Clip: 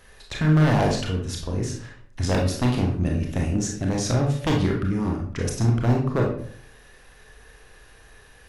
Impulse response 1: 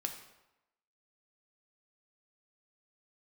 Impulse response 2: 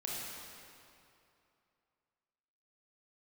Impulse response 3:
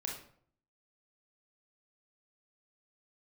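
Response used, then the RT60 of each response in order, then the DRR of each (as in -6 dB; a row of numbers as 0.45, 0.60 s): 3; 0.95, 2.7, 0.60 s; 4.0, -5.0, -1.0 dB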